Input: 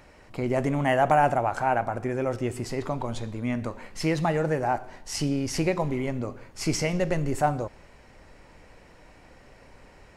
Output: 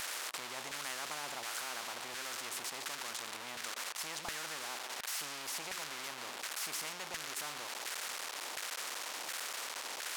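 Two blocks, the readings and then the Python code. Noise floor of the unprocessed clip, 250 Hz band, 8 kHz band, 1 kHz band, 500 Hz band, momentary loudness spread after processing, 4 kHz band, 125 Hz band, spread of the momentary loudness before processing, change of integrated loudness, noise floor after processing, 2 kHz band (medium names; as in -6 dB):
-53 dBFS, -27.5 dB, +0.5 dB, -16.5 dB, -22.5 dB, 3 LU, +1.0 dB, -33.0 dB, 10 LU, -12.5 dB, -46 dBFS, -6.5 dB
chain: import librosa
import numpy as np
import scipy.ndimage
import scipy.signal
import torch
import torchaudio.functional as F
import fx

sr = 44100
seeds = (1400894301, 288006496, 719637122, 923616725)

y = x + 0.5 * 10.0 ** (-27.5 / 20.0) * np.sign(x)
y = np.diff(y, prepend=0.0)
y = fx.filter_lfo_bandpass(y, sr, shape='saw_down', hz=1.4, low_hz=800.0, high_hz=1600.0, q=4.2)
y = fx.spectral_comp(y, sr, ratio=4.0)
y = F.gain(torch.from_numpy(y), 9.0).numpy()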